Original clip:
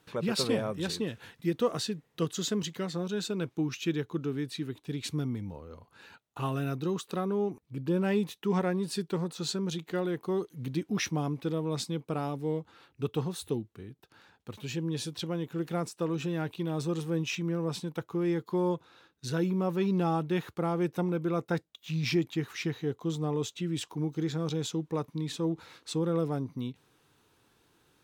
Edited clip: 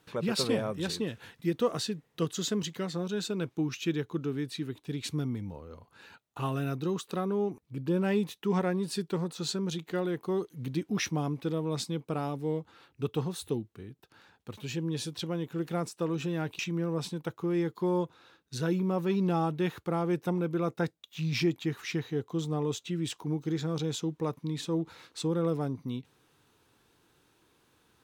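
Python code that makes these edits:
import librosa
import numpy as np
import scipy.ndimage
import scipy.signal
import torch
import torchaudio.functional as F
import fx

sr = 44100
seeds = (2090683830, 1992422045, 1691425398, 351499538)

y = fx.edit(x, sr, fx.cut(start_s=16.59, length_s=0.71), tone=tone)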